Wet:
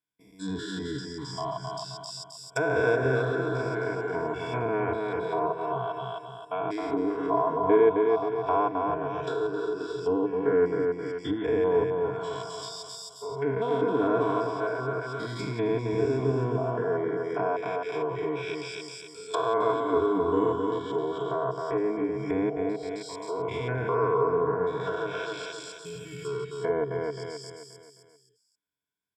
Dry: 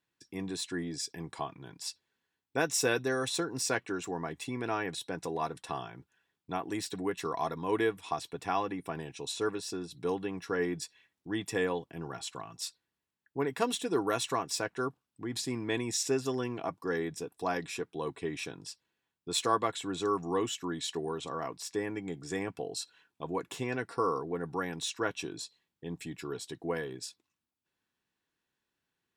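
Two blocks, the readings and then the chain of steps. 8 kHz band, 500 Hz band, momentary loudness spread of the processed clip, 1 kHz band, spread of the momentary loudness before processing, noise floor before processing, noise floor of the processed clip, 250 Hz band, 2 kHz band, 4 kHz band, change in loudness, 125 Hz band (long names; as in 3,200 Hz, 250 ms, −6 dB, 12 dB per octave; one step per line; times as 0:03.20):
−9.5 dB, +9.0 dB, 12 LU, +6.5 dB, 11 LU, below −85 dBFS, −56 dBFS, +5.5 dB, +3.5 dB, −3.5 dB, +6.0 dB, +8.0 dB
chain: spectrum averaged block by block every 200 ms
EQ curve with evenly spaced ripples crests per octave 1.7, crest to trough 13 dB
noise reduction from a noise print of the clip's start 18 dB
high-shelf EQ 8,700 Hz +7.5 dB
on a send: repeating echo 264 ms, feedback 43%, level −4 dB
on the sum: treble cut that deepens with the level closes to 1,300 Hz, closed at −32 dBFS
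level +7.5 dB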